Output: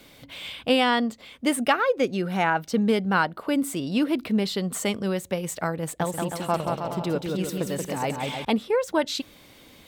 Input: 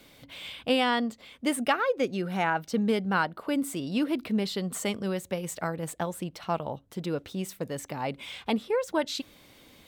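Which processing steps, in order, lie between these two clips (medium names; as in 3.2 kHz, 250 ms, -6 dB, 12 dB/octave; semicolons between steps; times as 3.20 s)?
5.82–8.45 s: bouncing-ball echo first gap 180 ms, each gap 0.75×, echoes 5; trim +4 dB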